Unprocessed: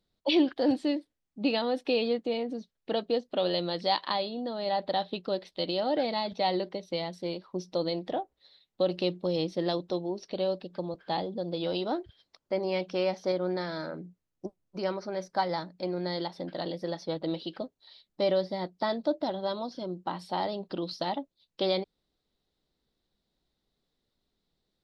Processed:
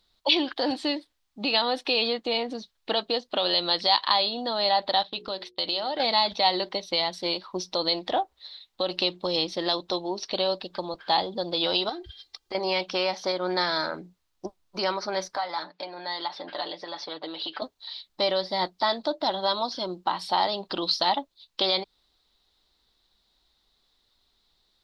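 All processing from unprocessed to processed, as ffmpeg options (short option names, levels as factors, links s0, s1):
-filter_complex "[0:a]asettb=1/sr,asplit=3[s0][s1][s2];[s0]atrim=end=5.034[s3];[s1]atrim=start=5.03:end=6,asetpts=PTS-STARTPTS,afade=t=in:d=0.004:c=qsin,afade=t=out:st=0.966:d=0.004:c=qsin,agate=range=0.0224:threshold=0.00562:ratio=3:release=100:detection=peak,bandreject=f=60:t=h:w=6,bandreject=f=120:t=h:w=6,bandreject=f=180:t=h:w=6,bandreject=f=240:t=h:w=6,bandreject=f=300:t=h:w=6,bandreject=f=360:t=h:w=6,bandreject=f=420:t=h:w=6,bandreject=f=480:t=h:w=6,acompressor=threshold=0.0158:ratio=3:attack=3.2:release=140:knee=1:detection=peak[s4];[s2]atrim=start=5.996[s5];[s3][s4]acrossfade=d=0.004:c1=hsin:c2=qsin[s6];[s6][s5]acrossfade=d=0.004:c1=qsin:c2=hsin,asettb=1/sr,asplit=3[s7][s8][s9];[s7]atrim=end=11.894[s10];[s8]atrim=start=11.89:end=12.55,asetpts=PTS-STARTPTS,afade=t=in:d=0.004:c=qsin,afade=t=out:st=0.656:d=0.004:c=qsin,equalizer=f=1000:t=o:w=1.6:g=-7.5,aecho=1:1:2.5:0.74,atrim=end_sample=29106,acompressor=threshold=0.0158:ratio=12:attack=3.2:release=140:knee=1:detection=peak[s11];[s9]atrim=start=12.546[s12];[s10][s11]acrossfade=d=0.004:c1=hsin:c2=qsin[s13];[s13][s12]acrossfade=d=0.004:c1=qsin:c2=hsin,asettb=1/sr,asplit=3[s14][s15][s16];[s14]atrim=end=15.364[s17];[s15]atrim=start=15.36:end=17.62,asetpts=PTS-STARTPTS,afade=t=in:d=0.004:c=qsin,afade=t=out:st=2.256:d=0.004:c=qsin,acompressor=threshold=0.0178:ratio=6:attack=3.2:release=140:knee=1:detection=peak,highpass=330,lowpass=3700,aecho=1:1:6.8:0.63,atrim=end_sample=99666[s18];[s16]atrim=start=17.616[s19];[s17][s18]acrossfade=d=0.004:c1=hsin:c2=qsin[s20];[s20][s19]acrossfade=d=0.004:c1=qsin:c2=hsin,equalizer=f=170:t=o:w=0.26:g=-5,alimiter=limit=0.0794:level=0:latency=1:release=230,equalizer=f=125:t=o:w=1:g=-9,equalizer=f=250:t=o:w=1:g=-6,equalizer=f=500:t=o:w=1:g=-6,equalizer=f=1000:t=o:w=1:g=5,equalizer=f=4000:t=o:w=1:g=7,volume=2.82"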